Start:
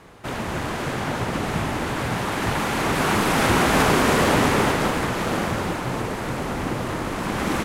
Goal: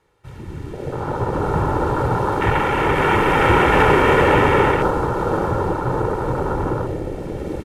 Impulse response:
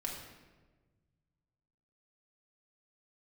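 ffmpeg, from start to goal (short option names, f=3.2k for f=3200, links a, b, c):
-af "dynaudnorm=f=370:g=7:m=11dB,afwtdn=0.112,aecho=1:1:2.2:0.59,volume=-1dB"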